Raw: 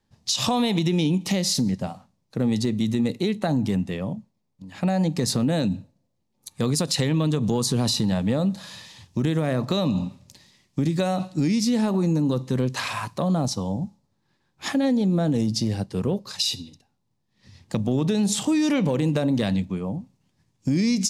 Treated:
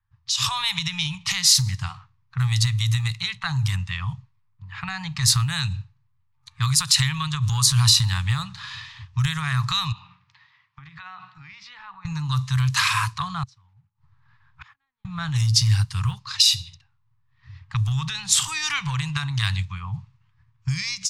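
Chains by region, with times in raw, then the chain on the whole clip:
0:09.92–0:12.05: band-pass filter 290–3,900 Hz + mains-hum notches 60/120/180/240/300/360/420 Hz + downward compressor 4 to 1, threshold −37 dBFS
0:13.43–0:15.05: one scale factor per block 5 bits + compressor whose output falls as the input rises −29 dBFS + gate with flip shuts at −32 dBFS, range −32 dB
whole clip: automatic gain control gain up to 11.5 dB; elliptic band-stop filter 120–1,100 Hz, stop band 40 dB; low-pass that shuts in the quiet parts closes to 1,500 Hz, open at −18.5 dBFS

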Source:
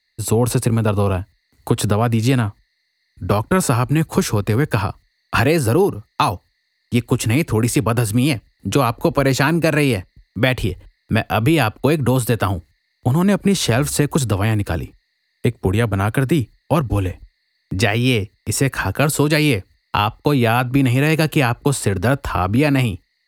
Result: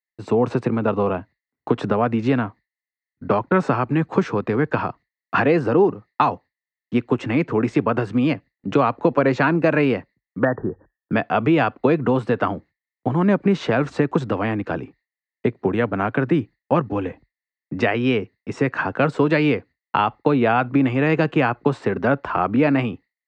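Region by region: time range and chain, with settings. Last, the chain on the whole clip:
0:10.39–0:11.12: linear-phase brick-wall low-pass 1,900 Hz + hard clipping −5.5 dBFS
whole clip: three-way crossover with the lows and the highs turned down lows −24 dB, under 150 Hz, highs −21 dB, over 2,500 Hz; noise gate with hold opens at −44 dBFS; Butterworth low-pass 7,000 Hz 36 dB per octave

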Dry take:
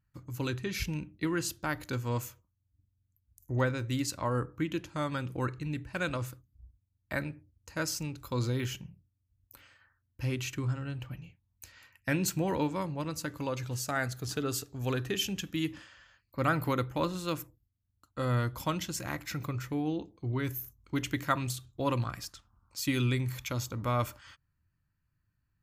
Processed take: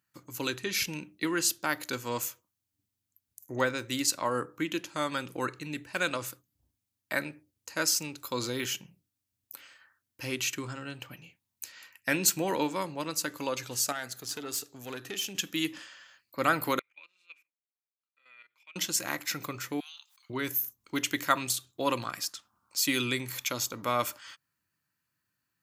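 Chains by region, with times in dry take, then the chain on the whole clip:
0:13.92–0:15.35: tube saturation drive 22 dB, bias 0.6 + downward compressor 2 to 1, threshold −39 dBFS
0:16.79–0:18.76: output level in coarse steps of 15 dB + resonant band-pass 2,400 Hz, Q 18
0:19.80–0:20.30: Butterworth high-pass 1,200 Hz 48 dB per octave + background raised ahead of every attack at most 66 dB per second
whole clip: high-pass filter 260 Hz 12 dB per octave; high-shelf EQ 2,500 Hz +8 dB; level +2 dB

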